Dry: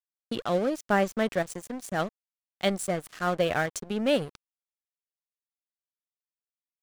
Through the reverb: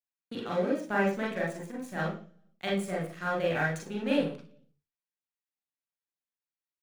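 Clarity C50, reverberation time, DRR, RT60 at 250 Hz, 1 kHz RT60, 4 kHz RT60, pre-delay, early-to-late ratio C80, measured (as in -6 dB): 5.5 dB, 0.45 s, -4.5 dB, 0.70 s, 0.40 s, 0.55 s, 32 ms, 11.5 dB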